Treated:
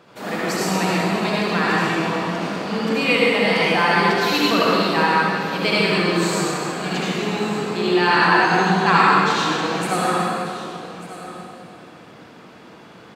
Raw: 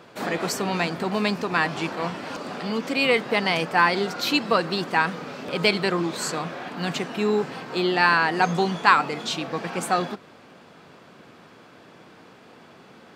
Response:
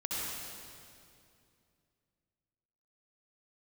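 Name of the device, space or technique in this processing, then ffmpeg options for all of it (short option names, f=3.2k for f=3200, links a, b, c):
stairwell: -filter_complex "[1:a]atrim=start_sample=2205[a];[0:a][a]afir=irnorm=-1:irlink=0,aecho=1:1:1193:0.178"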